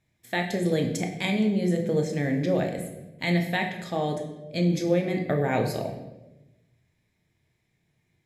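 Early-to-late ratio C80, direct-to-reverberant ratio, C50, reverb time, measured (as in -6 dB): 9.5 dB, 2.5 dB, 7.0 dB, 1.0 s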